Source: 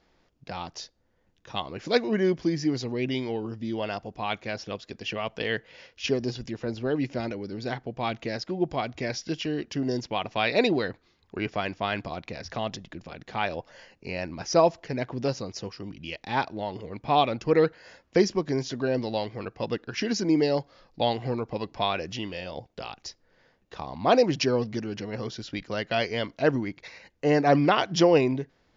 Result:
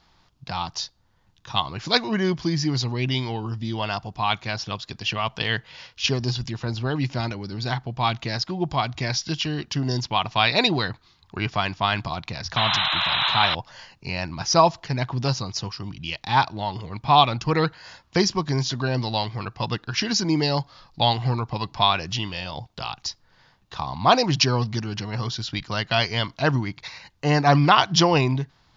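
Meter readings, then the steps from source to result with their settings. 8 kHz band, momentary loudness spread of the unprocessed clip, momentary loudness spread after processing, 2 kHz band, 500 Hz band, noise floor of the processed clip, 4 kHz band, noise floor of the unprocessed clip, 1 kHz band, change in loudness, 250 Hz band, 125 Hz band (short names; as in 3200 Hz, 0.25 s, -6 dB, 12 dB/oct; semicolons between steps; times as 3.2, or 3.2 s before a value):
n/a, 15 LU, 13 LU, +6.0 dB, -1.5 dB, -61 dBFS, +10.5 dB, -68 dBFS, +7.0 dB, +4.5 dB, +1.0 dB, +9.5 dB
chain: painted sound noise, 12.56–13.55, 560–4100 Hz -31 dBFS; ten-band EQ 125 Hz +6 dB, 250 Hz -5 dB, 500 Hz -11 dB, 1000 Hz +7 dB, 2000 Hz -4 dB, 4000 Hz +6 dB; gain +6 dB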